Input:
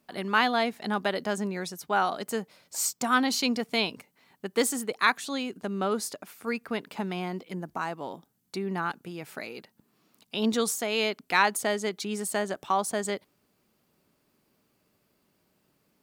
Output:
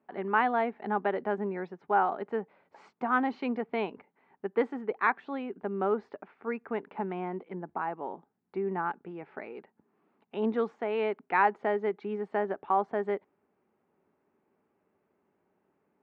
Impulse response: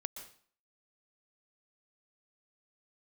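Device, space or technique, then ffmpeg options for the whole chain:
bass cabinet: -af "highpass=87,equalizer=frequency=130:width_type=q:width=4:gain=-10,equalizer=frequency=400:width_type=q:width=4:gain=7,equalizer=frequency=840:width_type=q:width=4:gain=7,lowpass=frequency=2100:width=0.5412,lowpass=frequency=2100:width=1.3066,volume=-4dB"

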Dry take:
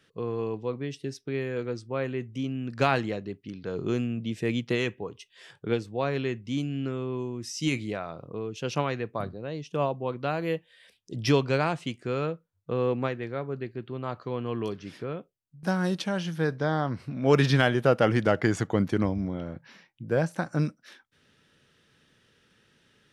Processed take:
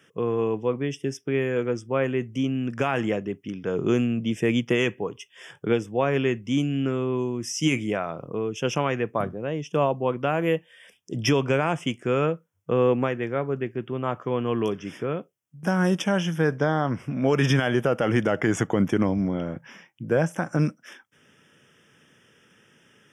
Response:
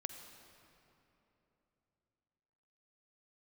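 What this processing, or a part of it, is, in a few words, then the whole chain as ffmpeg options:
PA system with an anti-feedback notch: -af "highpass=120,asuperstop=centerf=4200:order=8:qfactor=2.6,alimiter=limit=-17.5dB:level=0:latency=1:release=98,volume=6.5dB"

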